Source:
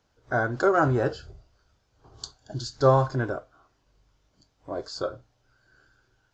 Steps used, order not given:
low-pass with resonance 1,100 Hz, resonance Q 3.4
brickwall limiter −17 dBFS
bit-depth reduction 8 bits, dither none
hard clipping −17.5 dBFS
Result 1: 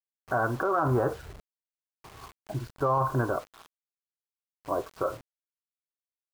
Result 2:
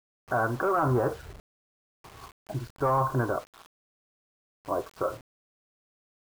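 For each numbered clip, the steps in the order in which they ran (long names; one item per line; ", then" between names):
low-pass with resonance, then bit-depth reduction, then brickwall limiter, then hard clipping
hard clipping, then low-pass with resonance, then brickwall limiter, then bit-depth reduction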